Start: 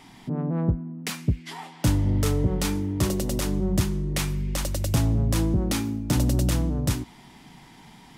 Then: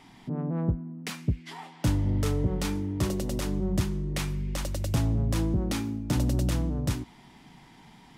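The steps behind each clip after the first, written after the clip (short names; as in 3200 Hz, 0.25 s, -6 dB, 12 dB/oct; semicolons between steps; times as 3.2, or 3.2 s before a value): high shelf 6600 Hz -6 dB; gain -3.5 dB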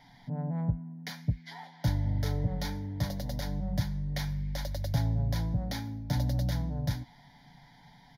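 fixed phaser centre 1800 Hz, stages 8; comb 7 ms, depth 38%; gain -1.5 dB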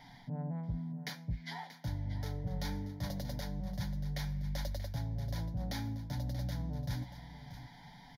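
reverse; compressor, threshold -37 dBFS, peak gain reduction 14 dB; reverse; echo 0.633 s -13 dB; gain +2 dB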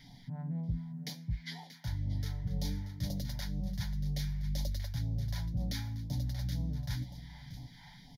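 phaser stages 2, 2 Hz, lowest notch 360–1400 Hz; gain +2.5 dB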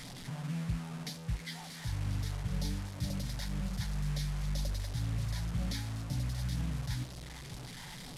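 delta modulation 64 kbps, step -40 dBFS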